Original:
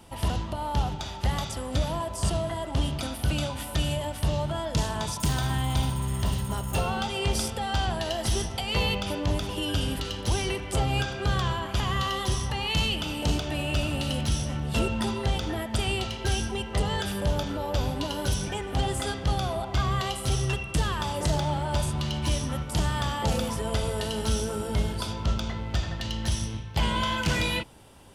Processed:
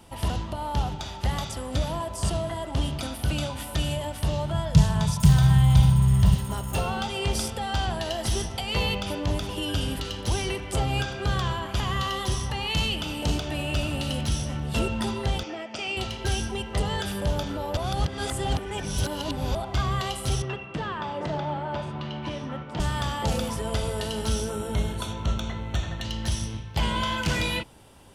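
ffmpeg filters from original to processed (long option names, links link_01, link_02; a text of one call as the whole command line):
ffmpeg -i in.wav -filter_complex "[0:a]asettb=1/sr,asplit=3[link_01][link_02][link_03];[link_01]atrim=end=4.534[link_04];[link_02]atrim=start=4.53:end=6.35,asetpts=PTS-STARTPTS,afade=type=in:duration=0.004:curve=qsin,afade=type=out:start_time=1.816:duration=0.004:curve=qsin,lowshelf=frequency=210:width_type=q:width=3:gain=7.5[link_05];[link_03]atrim=start=6.346[link_06];[link_04][link_05]acrossfade=duration=0.004:curve1=hsin:curve2=qsin[link_07];[link_07][link_06]acrossfade=duration=0.004:curve1=qsin:curve2=hsin,asettb=1/sr,asplit=3[link_08][link_09][link_10];[link_08]atrim=end=15.434[link_11];[link_09]atrim=start=15.43:end=15.97,asetpts=PTS-STARTPTS,afade=type=in:duration=0.004:curve=qsin,afade=type=out:start_time=0.536:duration=0.004:curve=qsin,highpass=340,equalizer=frequency=420:width_type=q:width=4:gain=-4,equalizer=frequency=990:width_type=q:width=4:gain=-7,equalizer=frequency=1700:width_type=q:width=4:gain=-7,equalizer=frequency=2500:width_type=q:width=4:gain=6,equalizer=frequency=3800:width_type=q:width=4:gain=-10,equalizer=frequency=5500:width_type=q:width=4:gain=4,lowpass=frequency=6100:width=0.5412,lowpass=frequency=6100:width=1.3066[link_12];[link_10]atrim=start=15.966[link_13];[link_11][link_12]acrossfade=duration=0.004:curve1=hsin:curve2=qsin[link_14];[link_14][link_13]acrossfade=duration=0.004:curve1=qsin:curve2=hsin,asettb=1/sr,asplit=3[link_15][link_16][link_17];[link_15]atrim=end=20.424[link_18];[link_16]atrim=start=20.42:end=22.8,asetpts=PTS-STARTPTS,afade=type=in:duration=0.004:curve=qsin,afade=type=out:start_time=2.376:duration=0.004:curve=qsin,highpass=170,lowpass=2400[link_19];[link_17]atrim=start=22.796[link_20];[link_18][link_19]acrossfade=duration=0.004:curve1=hsin:curve2=qsin[link_21];[link_21][link_20]acrossfade=duration=0.004:curve1=qsin:curve2=hsin,asettb=1/sr,asplit=3[link_22][link_23][link_24];[link_22]atrim=end=24.504[link_25];[link_23]atrim=start=24.5:end=26.05,asetpts=PTS-STARTPTS,afade=type=in:duration=0.004:curve=qsin,afade=type=out:start_time=1.546:duration=0.004:curve=qsin,asuperstop=centerf=4900:order=8:qfactor=5.4[link_26];[link_24]atrim=start=26.046[link_27];[link_25][link_26]acrossfade=duration=0.004:curve1=hsin:curve2=qsin[link_28];[link_28][link_27]acrossfade=duration=0.004:curve1=qsin:curve2=hsin,asplit=3[link_29][link_30][link_31];[link_29]atrim=end=17.772[link_32];[link_30]atrim=start=17.768:end=19.552,asetpts=PTS-STARTPTS,areverse[link_33];[link_31]atrim=start=19.548[link_34];[link_32][link_33]acrossfade=duration=0.004:curve1=hsin:curve2=hsin[link_35];[link_35][link_34]acrossfade=duration=0.004:curve1=hsin:curve2=hsin" out.wav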